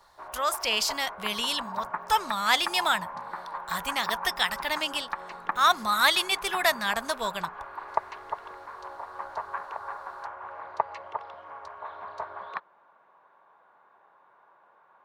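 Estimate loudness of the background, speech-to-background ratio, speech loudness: −37.0 LKFS, 10.5 dB, −26.5 LKFS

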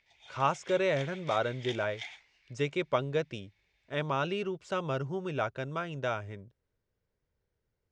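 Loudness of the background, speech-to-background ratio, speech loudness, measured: −45.5 LKFS, 12.5 dB, −33.0 LKFS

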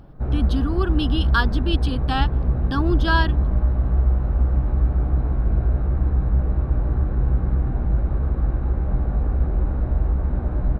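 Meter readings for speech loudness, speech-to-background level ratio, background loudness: −25.5 LKFS, −3.0 dB, −22.5 LKFS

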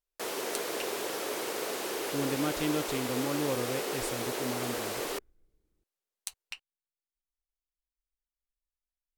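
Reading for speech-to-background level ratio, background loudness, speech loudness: −2.5 dB, −34.0 LKFS, −36.5 LKFS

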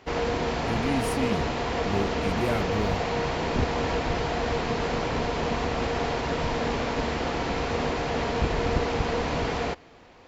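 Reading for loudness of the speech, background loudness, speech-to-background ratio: −31.0 LKFS, −27.5 LKFS, −3.5 dB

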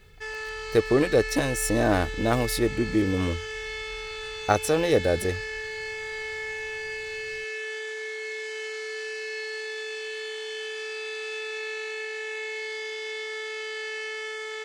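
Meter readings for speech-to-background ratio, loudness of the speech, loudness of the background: 8.0 dB, −25.0 LKFS, −33.0 LKFS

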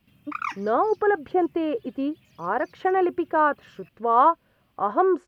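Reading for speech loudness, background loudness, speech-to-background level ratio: −24.0 LKFS, −33.5 LKFS, 9.5 dB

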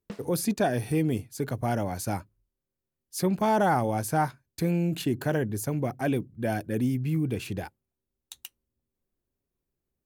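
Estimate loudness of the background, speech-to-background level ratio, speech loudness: −46.0 LKFS, 17.5 dB, −28.5 LKFS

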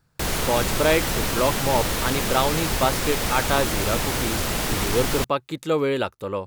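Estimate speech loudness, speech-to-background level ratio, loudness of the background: −25.0 LKFS, −0.5 dB, −24.5 LKFS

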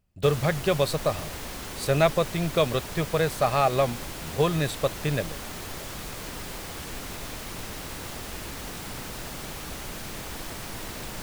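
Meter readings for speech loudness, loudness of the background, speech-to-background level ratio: −26.0 LKFS, −36.0 LKFS, 10.0 dB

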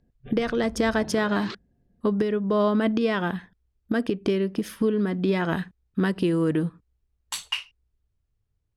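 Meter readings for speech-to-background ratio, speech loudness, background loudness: 16.5 dB, −25.5 LKFS, −42.0 LKFS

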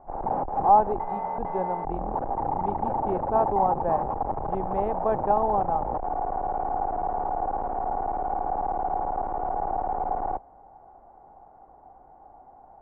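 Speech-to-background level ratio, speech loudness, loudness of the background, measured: 2.0 dB, −27.0 LKFS, −29.0 LKFS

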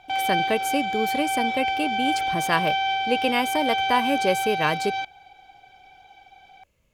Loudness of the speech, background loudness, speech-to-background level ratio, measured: −26.0 LKFS, −25.0 LKFS, −1.0 dB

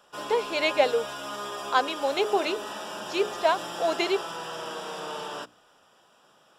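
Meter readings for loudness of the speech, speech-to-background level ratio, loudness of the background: −27.0 LKFS, 8.5 dB, −35.5 LKFS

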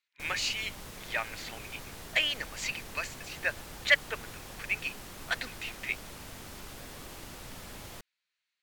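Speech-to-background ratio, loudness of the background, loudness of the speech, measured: 12.5 dB, −45.0 LKFS, −32.5 LKFS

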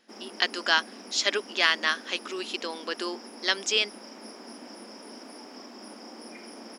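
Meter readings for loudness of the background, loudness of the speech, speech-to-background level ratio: −44.0 LKFS, −27.0 LKFS, 17.0 dB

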